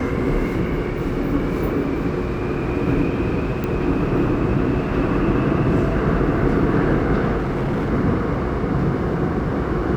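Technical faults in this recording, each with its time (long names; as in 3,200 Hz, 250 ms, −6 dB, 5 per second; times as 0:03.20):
0:03.64: click −13 dBFS
0:07.37–0:07.90: clipping −18.5 dBFS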